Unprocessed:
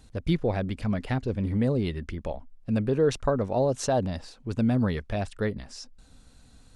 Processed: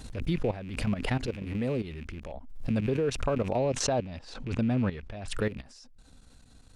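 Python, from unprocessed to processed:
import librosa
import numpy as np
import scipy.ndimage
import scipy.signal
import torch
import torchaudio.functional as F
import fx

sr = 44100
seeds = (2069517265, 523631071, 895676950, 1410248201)

y = fx.rattle_buzz(x, sr, strikes_db=-37.0, level_db=-34.0)
y = fx.bessel_lowpass(y, sr, hz=5500.0, order=2, at=(3.56, 5.28))
y = fx.level_steps(y, sr, step_db=13)
y = fx.low_shelf(y, sr, hz=220.0, db=-6.5, at=(1.18, 1.84))
y = fx.pre_swell(y, sr, db_per_s=64.0)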